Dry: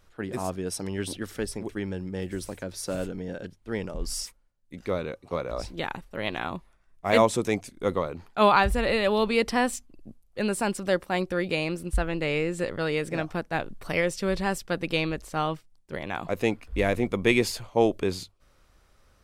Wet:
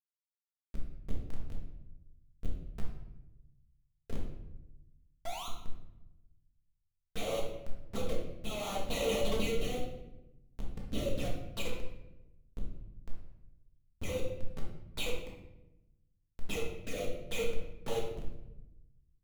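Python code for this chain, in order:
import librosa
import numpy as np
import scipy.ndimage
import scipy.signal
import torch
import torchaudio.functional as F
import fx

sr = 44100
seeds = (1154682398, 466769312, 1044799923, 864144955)

y = scipy.signal.sosfilt(scipy.signal.cheby1(8, 1.0, 430.0, 'highpass', fs=sr, output='sos'), x)
y = fx.high_shelf(y, sr, hz=2900.0, db=3.0)
y = fx.notch(y, sr, hz=660.0, q=14.0)
y = y + 0.5 * np.pad(y, (int(1.6 * sr / 1000.0), 0))[:len(y)]
y = fx.level_steps(y, sr, step_db=24)
y = fx.dispersion(y, sr, late='lows', ms=126.0, hz=2500.0)
y = fx.spec_paint(y, sr, seeds[0], shape='rise', start_s=5.25, length_s=0.23, low_hz=630.0, high_hz=1400.0, level_db=-20.0)
y = fx.schmitt(y, sr, flips_db=-36.0)
y = fx.env_flanger(y, sr, rest_ms=10.6, full_db=-36.5)
y = 10.0 ** (-38.0 / 20.0) * np.tanh(y / 10.0 ** (-38.0 / 20.0))
y = fx.rotary_switch(y, sr, hz=6.7, then_hz=0.7, switch_at_s=3.9)
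y = fx.room_shoebox(y, sr, seeds[1], volume_m3=340.0, walls='mixed', distance_m=1.6)
y = y * librosa.db_to_amplitude(4.0)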